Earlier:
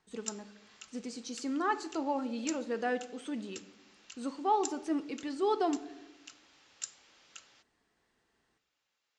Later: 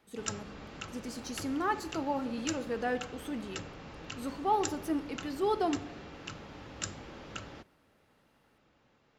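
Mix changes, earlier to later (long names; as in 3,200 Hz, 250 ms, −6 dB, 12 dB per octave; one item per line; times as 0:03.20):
speech: remove Butterworth low-pass 8,800 Hz 48 dB per octave
background: remove first difference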